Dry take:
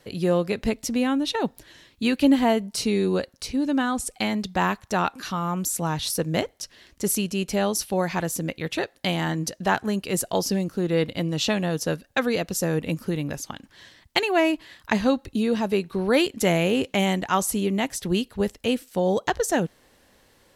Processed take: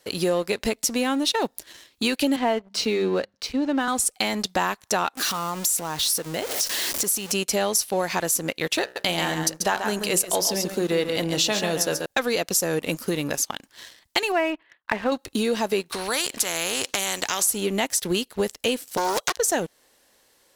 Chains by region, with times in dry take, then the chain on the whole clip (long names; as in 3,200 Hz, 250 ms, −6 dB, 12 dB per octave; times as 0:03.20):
0:02.36–0:03.88: low-pass filter 3,200 Hz + mains-hum notches 50/100/150/200 Hz + multiband upward and downward expander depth 40%
0:05.17–0:07.32: converter with a step at zero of −31 dBFS + downward compressor 4 to 1, threshold −30 dBFS
0:08.82–0:12.06: hum removal 63.38 Hz, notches 30 + single-tap delay 137 ms −8 dB
0:14.32–0:15.12: downward expander −42 dBFS + low-pass filter 2,500 Hz 24 dB per octave + low-shelf EQ 360 Hz −6.5 dB
0:15.92–0:17.43: low-pass filter 10,000 Hz + downward compressor 1.5 to 1, threshold −32 dBFS + every bin compressed towards the loudest bin 2 to 1
0:18.97–0:19.37: high-pass filter 340 Hz + spectral tilt +3 dB per octave + highs frequency-modulated by the lows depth 0.61 ms
whole clip: bass and treble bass −11 dB, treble +7 dB; downward compressor 3 to 1, threshold −29 dBFS; leveller curve on the samples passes 2